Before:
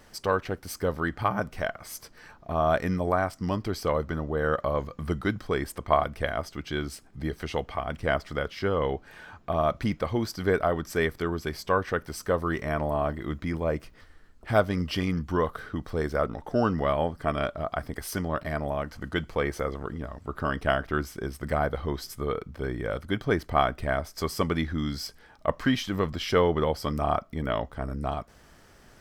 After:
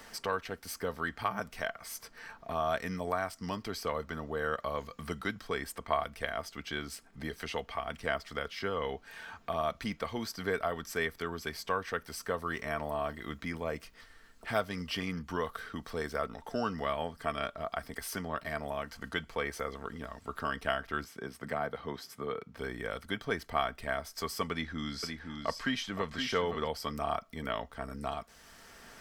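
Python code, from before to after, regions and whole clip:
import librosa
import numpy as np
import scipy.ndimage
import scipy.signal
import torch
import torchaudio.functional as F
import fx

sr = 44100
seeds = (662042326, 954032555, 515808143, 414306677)

y = fx.chain(x, sr, fx.highpass(hz=100.0, slope=24),
    fx.high_shelf(hz=3100.0, db=-10.5), at=(21.04, 22.57))
y = fx.chain(y, sr, fx.lowpass(hz=9700.0, slope=12),
    fx.echo_single(ms=517, db=-7.5), at=(24.51, 26.68))
y = fx.tilt_shelf(y, sr, db=-5.0, hz=860.0)
y = y + 0.33 * np.pad(y, (int(4.4 * sr / 1000.0), 0))[:len(y)]
y = fx.band_squash(y, sr, depth_pct=40)
y = y * 10.0 ** (-7.0 / 20.0)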